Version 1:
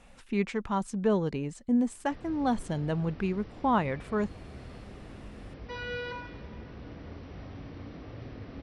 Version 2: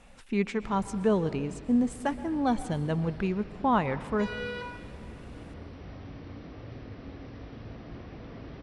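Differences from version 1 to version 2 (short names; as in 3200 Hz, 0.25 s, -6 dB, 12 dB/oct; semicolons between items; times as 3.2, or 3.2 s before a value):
speech: send on; background: entry -1.50 s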